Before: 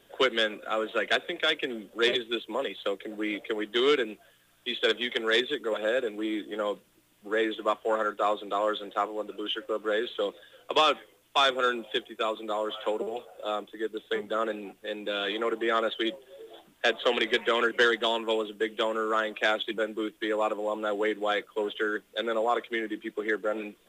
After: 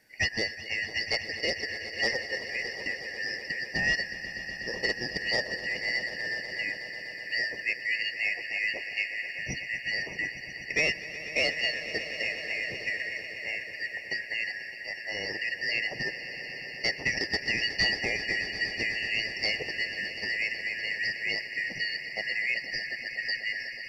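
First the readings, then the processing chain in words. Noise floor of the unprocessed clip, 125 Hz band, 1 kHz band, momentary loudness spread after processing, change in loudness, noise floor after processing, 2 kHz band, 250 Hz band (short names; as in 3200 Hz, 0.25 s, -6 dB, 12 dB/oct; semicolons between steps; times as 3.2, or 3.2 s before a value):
-63 dBFS, n/a, -17.0 dB, 7 LU, -1.0 dB, -41 dBFS, +4.0 dB, -11.0 dB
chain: four-band scrambler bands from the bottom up 3142; swelling echo 0.123 s, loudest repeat 5, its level -15 dB; gain -4 dB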